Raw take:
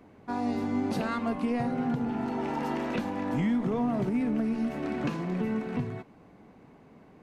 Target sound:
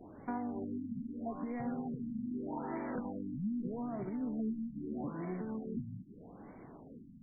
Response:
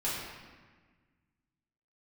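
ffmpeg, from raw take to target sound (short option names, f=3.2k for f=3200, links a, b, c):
-af "acompressor=threshold=-39dB:ratio=6,flanger=delay=2.7:depth=2.7:regen=66:speed=0.75:shape=triangular,afftfilt=real='re*lt(b*sr/1024,280*pow(2400/280,0.5+0.5*sin(2*PI*0.8*pts/sr)))':imag='im*lt(b*sr/1024,280*pow(2400/280,0.5+0.5*sin(2*PI*0.8*pts/sr)))':win_size=1024:overlap=0.75,volume=6.5dB"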